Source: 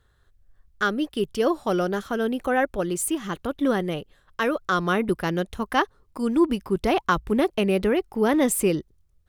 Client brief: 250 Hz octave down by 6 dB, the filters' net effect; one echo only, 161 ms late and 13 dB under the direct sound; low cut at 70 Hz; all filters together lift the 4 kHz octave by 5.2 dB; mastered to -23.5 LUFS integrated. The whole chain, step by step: high-pass 70 Hz; peaking EQ 250 Hz -8.5 dB; peaking EQ 4 kHz +7.5 dB; delay 161 ms -13 dB; trim +2.5 dB

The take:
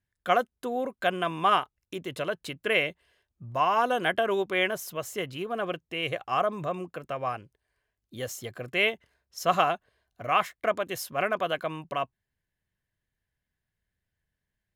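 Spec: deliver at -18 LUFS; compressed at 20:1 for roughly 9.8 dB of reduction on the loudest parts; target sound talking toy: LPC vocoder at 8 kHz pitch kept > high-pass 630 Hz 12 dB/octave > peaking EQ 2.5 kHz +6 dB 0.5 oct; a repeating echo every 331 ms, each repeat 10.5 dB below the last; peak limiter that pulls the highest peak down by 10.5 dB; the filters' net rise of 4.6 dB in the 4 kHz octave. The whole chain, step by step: peaking EQ 4 kHz +3 dB; compression 20:1, threshold -27 dBFS; peak limiter -26.5 dBFS; feedback delay 331 ms, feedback 30%, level -10.5 dB; LPC vocoder at 8 kHz pitch kept; high-pass 630 Hz 12 dB/octave; peaking EQ 2.5 kHz +6 dB 0.5 oct; trim +21 dB

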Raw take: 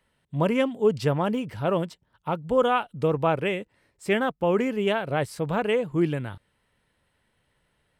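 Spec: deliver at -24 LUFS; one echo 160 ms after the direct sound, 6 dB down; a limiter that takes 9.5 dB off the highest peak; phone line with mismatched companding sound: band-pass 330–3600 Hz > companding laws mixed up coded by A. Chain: peak limiter -19.5 dBFS; band-pass 330–3600 Hz; delay 160 ms -6 dB; companding laws mixed up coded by A; trim +8 dB

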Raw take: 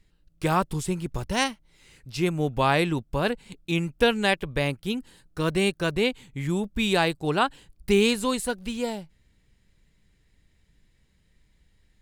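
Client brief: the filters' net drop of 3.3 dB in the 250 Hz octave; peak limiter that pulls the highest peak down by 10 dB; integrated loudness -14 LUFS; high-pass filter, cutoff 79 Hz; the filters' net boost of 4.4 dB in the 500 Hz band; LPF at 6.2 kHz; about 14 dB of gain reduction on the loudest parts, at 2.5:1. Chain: high-pass 79 Hz; low-pass 6.2 kHz; peaking EQ 250 Hz -7.5 dB; peaking EQ 500 Hz +7.5 dB; compression 2.5:1, threshold -33 dBFS; trim +24 dB; peak limiter -3 dBFS

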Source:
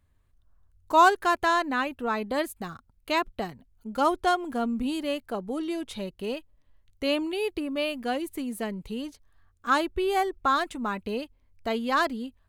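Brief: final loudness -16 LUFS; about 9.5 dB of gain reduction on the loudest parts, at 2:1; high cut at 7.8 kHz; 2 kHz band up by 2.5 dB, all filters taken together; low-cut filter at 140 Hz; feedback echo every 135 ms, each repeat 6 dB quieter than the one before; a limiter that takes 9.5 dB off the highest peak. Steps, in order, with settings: high-pass 140 Hz; low-pass 7.8 kHz; peaking EQ 2 kHz +3.5 dB; compression 2:1, threshold -30 dBFS; peak limiter -26 dBFS; feedback delay 135 ms, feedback 50%, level -6 dB; trim +18.5 dB

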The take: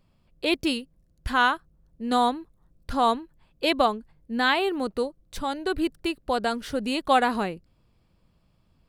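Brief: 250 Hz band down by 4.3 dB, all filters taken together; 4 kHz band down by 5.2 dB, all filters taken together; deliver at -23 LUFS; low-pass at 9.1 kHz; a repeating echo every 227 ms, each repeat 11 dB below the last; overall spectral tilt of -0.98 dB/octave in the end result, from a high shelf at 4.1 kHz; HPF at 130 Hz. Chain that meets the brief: high-pass 130 Hz; low-pass 9.1 kHz; peaking EQ 250 Hz -5 dB; peaking EQ 4 kHz -4.5 dB; treble shelf 4.1 kHz -4 dB; feedback delay 227 ms, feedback 28%, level -11 dB; trim +4.5 dB

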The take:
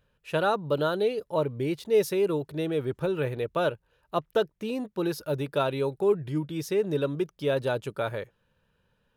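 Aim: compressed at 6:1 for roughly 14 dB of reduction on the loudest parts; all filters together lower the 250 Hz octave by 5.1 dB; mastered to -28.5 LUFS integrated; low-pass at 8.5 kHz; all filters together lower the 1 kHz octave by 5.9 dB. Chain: low-pass 8.5 kHz; peaking EQ 250 Hz -7.5 dB; peaking EQ 1 kHz -8 dB; compression 6:1, threshold -37 dBFS; trim +13 dB

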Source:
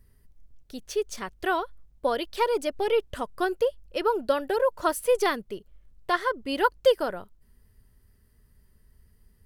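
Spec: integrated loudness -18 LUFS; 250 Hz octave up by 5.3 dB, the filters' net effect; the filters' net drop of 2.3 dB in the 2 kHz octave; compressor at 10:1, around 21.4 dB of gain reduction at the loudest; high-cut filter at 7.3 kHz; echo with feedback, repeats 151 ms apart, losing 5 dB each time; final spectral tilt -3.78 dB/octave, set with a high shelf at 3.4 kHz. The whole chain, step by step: low-pass 7.3 kHz; peaking EQ 250 Hz +7.5 dB; peaking EQ 2 kHz -5 dB; treble shelf 3.4 kHz +5.5 dB; compression 10:1, threshold -36 dBFS; feedback delay 151 ms, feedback 56%, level -5 dB; trim +22 dB

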